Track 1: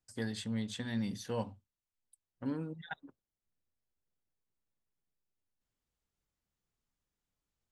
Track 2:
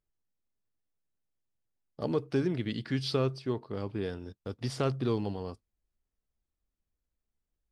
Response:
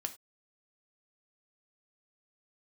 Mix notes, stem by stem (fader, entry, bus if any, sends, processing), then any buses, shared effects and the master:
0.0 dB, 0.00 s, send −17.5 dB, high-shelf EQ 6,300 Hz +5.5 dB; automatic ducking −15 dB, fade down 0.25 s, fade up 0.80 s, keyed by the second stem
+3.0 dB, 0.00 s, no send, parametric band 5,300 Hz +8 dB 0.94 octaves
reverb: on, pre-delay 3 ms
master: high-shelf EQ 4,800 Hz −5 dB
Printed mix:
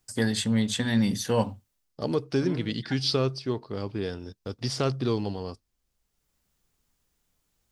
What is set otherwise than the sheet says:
stem 1 0.0 dB → +11.0 dB
master: missing high-shelf EQ 4,800 Hz −5 dB

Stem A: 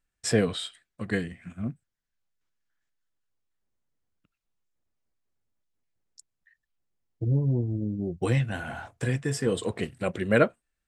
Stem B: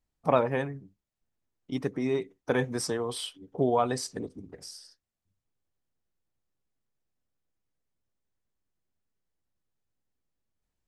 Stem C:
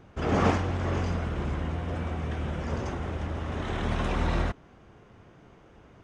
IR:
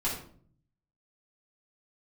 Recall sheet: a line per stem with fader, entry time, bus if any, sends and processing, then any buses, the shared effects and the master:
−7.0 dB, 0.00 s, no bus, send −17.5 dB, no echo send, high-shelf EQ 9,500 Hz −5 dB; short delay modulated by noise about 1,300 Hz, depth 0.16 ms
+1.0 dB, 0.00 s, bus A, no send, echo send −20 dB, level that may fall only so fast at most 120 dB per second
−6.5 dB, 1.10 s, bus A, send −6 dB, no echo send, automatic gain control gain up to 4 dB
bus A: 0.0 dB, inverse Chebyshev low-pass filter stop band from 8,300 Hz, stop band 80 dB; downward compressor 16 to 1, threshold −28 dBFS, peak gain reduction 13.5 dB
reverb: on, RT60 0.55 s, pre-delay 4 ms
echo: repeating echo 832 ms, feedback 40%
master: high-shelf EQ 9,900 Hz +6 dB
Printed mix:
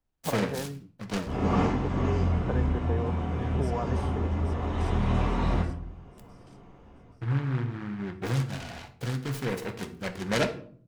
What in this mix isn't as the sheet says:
stem A: send −17.5 dB → −11.5 dB
stem B: missing level that may fall only so fast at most 120 dB per second
master: missing high-shelf EQ 9,900 Hz +6 dB

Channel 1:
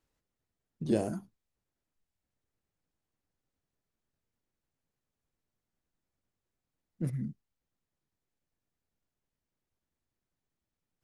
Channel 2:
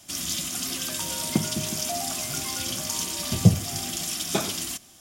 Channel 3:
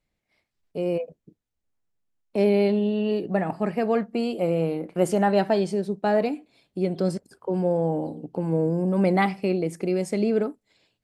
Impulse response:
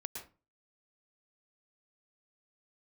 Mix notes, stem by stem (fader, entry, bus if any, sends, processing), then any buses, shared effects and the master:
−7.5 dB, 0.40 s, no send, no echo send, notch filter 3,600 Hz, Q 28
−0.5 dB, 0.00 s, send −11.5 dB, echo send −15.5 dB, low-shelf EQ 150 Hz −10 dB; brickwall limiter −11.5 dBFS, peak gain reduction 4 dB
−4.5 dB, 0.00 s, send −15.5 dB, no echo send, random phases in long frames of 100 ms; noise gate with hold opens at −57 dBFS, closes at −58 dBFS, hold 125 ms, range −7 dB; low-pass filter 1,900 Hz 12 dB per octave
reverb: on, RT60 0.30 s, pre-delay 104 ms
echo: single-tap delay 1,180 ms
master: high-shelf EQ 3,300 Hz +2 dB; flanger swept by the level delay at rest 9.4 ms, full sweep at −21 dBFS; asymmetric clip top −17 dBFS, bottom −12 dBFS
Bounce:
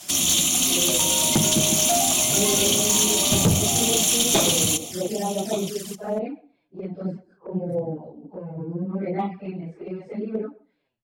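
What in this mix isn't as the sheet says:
stem 1: entry 0.40 s → 0.65 s
stem 2 −0.5 dB → +11.0 dB

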